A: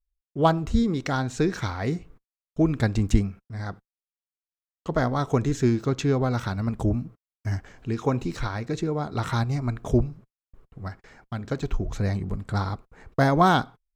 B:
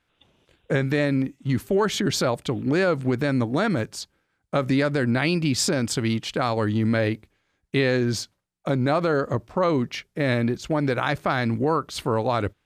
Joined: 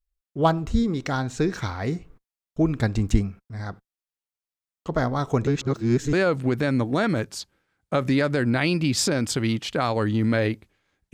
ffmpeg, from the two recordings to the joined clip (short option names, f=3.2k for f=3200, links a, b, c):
-filter_complex "[0:a]apad=whole_dur=11.13,atrim=end=11.13,asplit=2[a][b];[a]atrim=end=5.472[c];[b]atrim=start=5.468:end=6.132,asetpts=PTS-STARTPTS,areverse[d];[1:a]atrim=start=2.738:end=7.74[e];[c][d]acrossfade=d=0.004:c1=hsin:c2=hsin[f];[f][e]acrossfade=d=0.004:c1=hsin:c2=hsin"